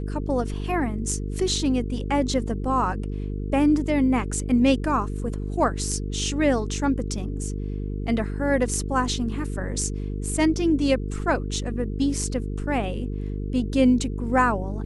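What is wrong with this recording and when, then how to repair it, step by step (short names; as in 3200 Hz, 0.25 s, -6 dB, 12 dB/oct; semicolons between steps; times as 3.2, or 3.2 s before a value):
buzz 50 Hz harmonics 9 -29 dBFS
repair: de-hum 50 Hz, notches 9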